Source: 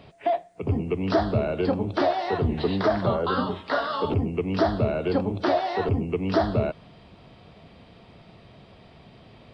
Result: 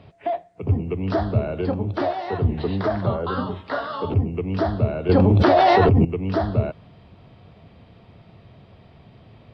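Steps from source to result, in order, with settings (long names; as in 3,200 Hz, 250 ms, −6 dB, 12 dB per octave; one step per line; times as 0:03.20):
low-pass filter 3,300 Hz 6 dB per octave
parametric band 97 Hz +7.5 dB 1.1 octaves
0:05.09–0:06.05: envelope flattener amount 100%
level −1 dB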